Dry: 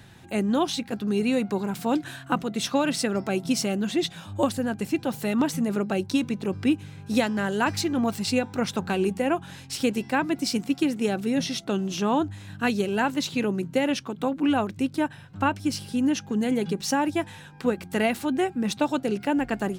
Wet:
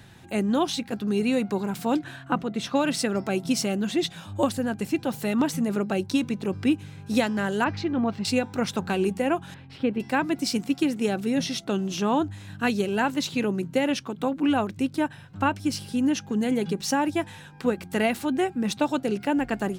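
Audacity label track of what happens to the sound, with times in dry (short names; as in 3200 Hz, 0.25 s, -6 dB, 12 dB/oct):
1.990000	2.750000	high shelf 4900 Hz -12 dB
7.640000	8.250000	air absorption 240 m
9.540000	10.000000	air absorption 430 m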